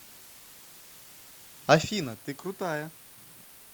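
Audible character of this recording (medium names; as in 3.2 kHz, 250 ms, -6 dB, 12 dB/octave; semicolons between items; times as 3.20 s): chopped level 0.63 Hz, depth 60%, duty 15%; a quantiser's noise floor 8-bit, dither triangular; Opus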